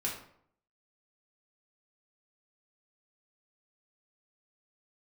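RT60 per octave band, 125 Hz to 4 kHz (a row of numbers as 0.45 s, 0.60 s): 0.75 s, 0.70 s, 0.65 s, 0.65 s, 0.50 s, 0.40 s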